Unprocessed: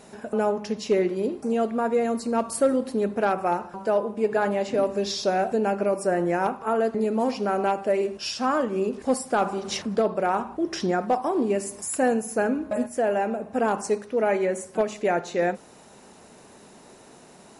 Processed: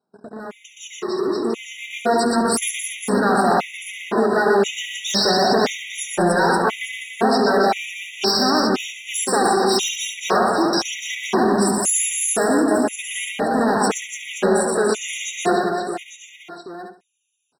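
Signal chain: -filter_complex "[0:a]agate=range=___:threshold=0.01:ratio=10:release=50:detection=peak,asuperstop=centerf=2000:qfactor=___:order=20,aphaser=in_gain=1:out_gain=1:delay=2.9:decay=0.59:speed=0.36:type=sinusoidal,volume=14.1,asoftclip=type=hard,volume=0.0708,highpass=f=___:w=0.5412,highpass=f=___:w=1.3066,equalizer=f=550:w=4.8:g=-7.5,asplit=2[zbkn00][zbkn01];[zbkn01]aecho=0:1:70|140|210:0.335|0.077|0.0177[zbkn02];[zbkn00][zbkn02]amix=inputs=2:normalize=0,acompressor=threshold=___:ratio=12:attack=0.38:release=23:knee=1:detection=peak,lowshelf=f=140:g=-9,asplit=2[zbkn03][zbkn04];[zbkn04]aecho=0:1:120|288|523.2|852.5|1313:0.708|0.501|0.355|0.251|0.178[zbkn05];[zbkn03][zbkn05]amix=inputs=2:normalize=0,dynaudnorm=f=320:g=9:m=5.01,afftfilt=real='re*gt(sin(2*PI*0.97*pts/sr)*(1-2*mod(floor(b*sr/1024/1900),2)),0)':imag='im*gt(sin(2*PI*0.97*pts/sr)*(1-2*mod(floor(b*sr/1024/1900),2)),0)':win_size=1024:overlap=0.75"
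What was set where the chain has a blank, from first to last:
0.02, 2.7, 100, 100, 0.0447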